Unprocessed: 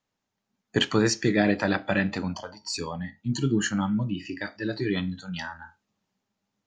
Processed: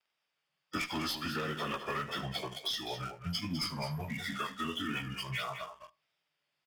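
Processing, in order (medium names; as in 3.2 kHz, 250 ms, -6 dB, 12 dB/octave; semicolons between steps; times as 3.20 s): frequency-domain pitch shifter -5.5 st; level-controlled noise filter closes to 2.7 kHz, open at -21.5 dBFS; RIAA curve recording; waveshaping leveller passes 2; treble shelf 4.2 kHz +8.5 dB; band-stop 4.1 kHz, Q 5.9; one-sided clip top -18 dBFS; compression 10:1, threshold -32 dBFS, peak gain reduction 16.5 dB; multi-tap echo 75/207 ms -17.5/-9.5 dB; vibrato 1.5 Hz 46 cents; tape noise reduction on one side only encoder only; trim -1.5 dB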